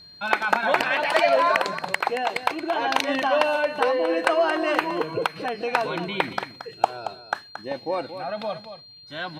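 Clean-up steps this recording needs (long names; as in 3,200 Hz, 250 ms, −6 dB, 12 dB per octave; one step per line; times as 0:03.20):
notch filter 4,200 Hz, Q 30
echo removal 226 ms −11 dB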